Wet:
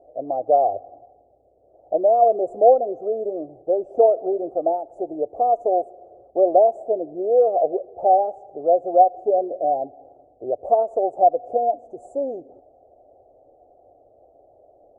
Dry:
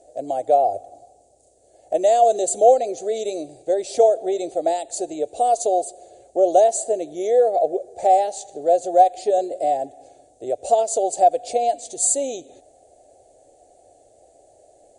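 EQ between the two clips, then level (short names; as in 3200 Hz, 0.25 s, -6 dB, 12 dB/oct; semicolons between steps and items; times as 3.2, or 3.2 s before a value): elliptic low-pass 1200 Hz, stop band 40 dB; 0.0 dB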